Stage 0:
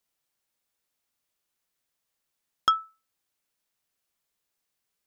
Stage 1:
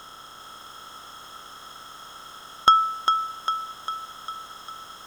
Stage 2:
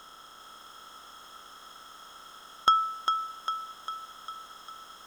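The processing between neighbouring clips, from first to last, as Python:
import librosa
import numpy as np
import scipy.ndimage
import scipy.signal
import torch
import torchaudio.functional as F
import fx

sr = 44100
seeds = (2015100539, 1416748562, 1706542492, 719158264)

y1 = fx.bin_compress(x, sr, power=0.4)
y1 = fx.echo_thinned(y1, sr, ms=401, feedback_pct=60, hz=420.0, wet_db=-5.5)
y1 = y1 * 10.0 ** (5.5 / 20.0)
y2 = fx.peak_eq(y1, sr, hz=110.0, db=-12.5, octaves=0.56)
y2 = y2 * 10.0 ** (-6.0 / 20.0)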